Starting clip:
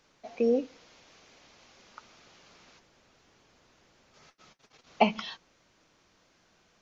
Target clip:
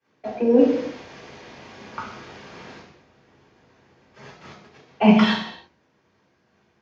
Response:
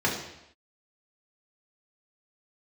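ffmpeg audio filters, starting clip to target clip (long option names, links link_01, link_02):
-filter_complex "[0:a]aeval=exprs='if(lt(val(0),0),0.708*val(0),val(0))':channel_layout=same,agate=range=-33dB:threshold=-55dB:ratio=3:detection=peak,highshelf=frequency=5200:gain=-11,areverse,acompressor=threshold=-35dB:ratio=20,areverse[link_01];[1:a]atrim=start_sample=2205,afade=type=out:start_time=0.38:duration=0.01,atrim=end_sample=17199[link_02];[link_01][link_02]afir=irnorm=-1:irlink=0,volume=8.5dB"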